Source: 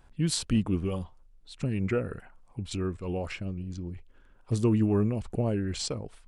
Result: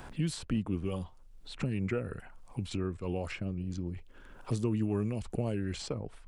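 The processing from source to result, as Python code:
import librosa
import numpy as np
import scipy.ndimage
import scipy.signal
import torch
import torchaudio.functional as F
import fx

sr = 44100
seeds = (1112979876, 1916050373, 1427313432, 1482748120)

y = fx.band_squash(x, sr, depth_pct=70)
y = y * librosa.db_to_amplitude(-4.5)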